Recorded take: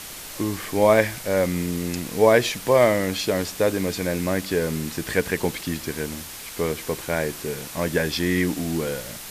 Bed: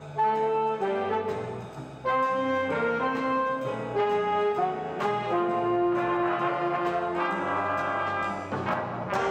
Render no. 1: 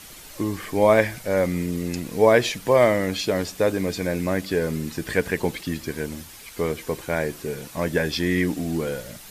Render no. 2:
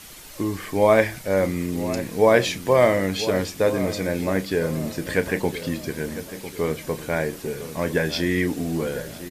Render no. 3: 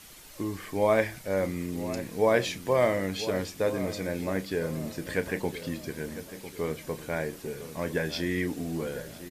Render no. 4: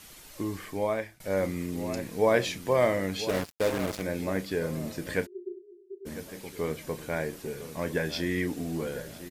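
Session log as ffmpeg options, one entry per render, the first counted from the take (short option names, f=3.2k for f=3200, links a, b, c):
-af "afftdn=nr=8:nf=-38"
-filter_complex "[0:a]asplit=2[a][b];[b]adelay=31,volume=-12.5dB[c];[a][c]amix=inputs=2:normalize=0,asplit=2[d][e];[e]adelay=1001,lowpass=f=1.6k:p=1,volume=-12.5dB,asplit=2[f][g];[g]adelay=1001,lowpass=f=1.6k:p=1,volume=0.47,asplit=2[h][i];[i]adelay=1001,lowpass=f=1.6k:p=1,volume=0.47,asplit=2[j][k];[k]adelay=1001,lowpass=f=1.6k:p=1,volume=0.47,asplit=2[l][m];[m]adelay=1001,lowpass=f=1.6k:p=1,volume=0.47[n];[d][f][h][j][l][n]amix=inputs=6:normalize=0"
-af "volume=-7dB"
-filter_complex "[0:a]asettb=1/sr,asplit=3[a][b][c];[a]atrim=end=3.294[d];[b]atrim=start=3.29:end=4.02,asetpts=PTS-STARTPTS,afade=t=in:d=0.004:c=qsin,afade=t=out:st=0.726:d=0.004:c=qsin,acrusher=bits=4:mix=0:aa=0.5[e];[c]atrim=start=4.016[f];[d][e]acrossfade=d=0.004:c1=hsin:c2=qsin[g];[g][f]acrossfade=d=0.004:c1=qsin:c2=hsin,asplit=3[h][i][j];[h]afade=t=out:st=5.25:d=0.02[k];[i]asuperpass=centerf=380:order=20:qfactor=6,afade=t=in:st=5.25:d=0.02,afade=t=out:st=6.05:d=0.02[l];[j]afade=t=in:st=6.05:d=0.02[m];[k][l][m]amix=inputs=3:normalize=0,asplit=2[n][o];[n]atrim=end=1.2,asetpts=PTS-STARTPTS,afade=t=out:st=0.58:d=0.62:silence=0.0749894[p];[o]atrim=start=1.2,asetpts=PTS-STARTPTS,afade=t=in:d=0.004:c=hsin:silence=0.0749894[q];[p][q]concat=n=2:v=0:a=1"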